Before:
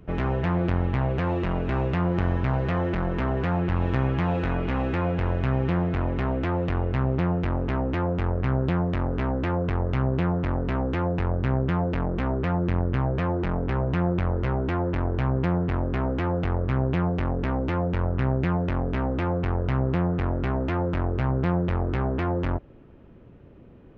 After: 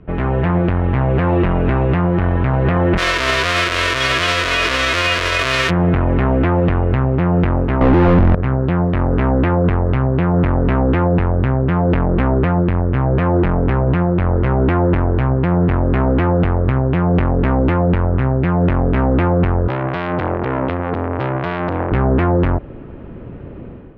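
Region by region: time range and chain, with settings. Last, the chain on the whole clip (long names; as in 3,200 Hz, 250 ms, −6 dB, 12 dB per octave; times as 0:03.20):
0:02.97–0:05.69: spectral envelope flattened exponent 0.1 + Butterworth band-reject 830 Hz, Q 4 + parametric band 190 Hz −13 dB 0.65 octaves
0:07.81–0:08.35: spectral tilt −4 dB per octave + mid-hump overdrive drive 44 dB, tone 1,400 Hz, clips at −2.5 dBFS
0:19.68–0:21.92: high-pass filter 86 Hz 24 dB per octave + saturating transformer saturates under 1,800 Hz
whole clip: low-pass filter 2,700 Hz 12 dB per octave; automatic gain control; brickwall limiter −13 dBFS; level +6 dB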